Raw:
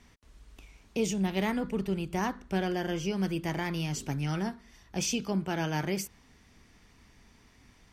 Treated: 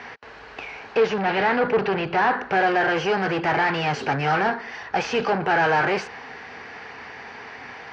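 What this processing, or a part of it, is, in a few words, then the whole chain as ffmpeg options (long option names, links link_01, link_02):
overdrive pedal into a guitar cabinet: -filter_complex "[0:a]asplit=2[link_01][link_02];[link_02]highpass=frequency=720:poles=1,volume=31dB,asoftclip=type=tanh:threshold=-16.5dB[link_03];[link_01][link_03]amix=inputs=2:normalize=0,lowpass=frequency=6300:poles=1,volume=-6dB,highpass=77,equalizer=frequency=200:width_type=q:width=4:gain=-5,equalizer=frequency=310:width_type=q:width=4:gain=-4,equalizer=frequency=460:width_type=q:width=4:gain=8,equalizer=frequency=790:width_type=q:width=4:gain=9,equalizer=frequency=1600:width_type=q:width=4:gain=7,equalizer=frequency=3500:width_type=q:width=4:gain=-9,lowpass=frequency=4100:width=0.5412,lowpass=frequency=4100:width=1.3066,asettb=1/sr,asplit=3[link_04][link_05][link_06];[link_04]atrim=end=0.974[link_07];[link_05]atrim=start=0.97:end=2.39,asetpts=PTS-STARTPTS,afade=type=in:duration=0.004:curve=qsin,afade=type=out:start_time=1.416:duration=0.004:curve=qsin,lowpass=frequency=5700:width=0.5412,lowpass=frequency=5700:width=1.3066[link_08];[link_06]atrim=start=2.386[link_09];[link_07][link_08]acrossfade=duration=0.004:curve1=hsin:curve2=qsin[link_10];[link_10][link_09]acrossfade=duration=0.004:curve1=qsin:curve2=hsin"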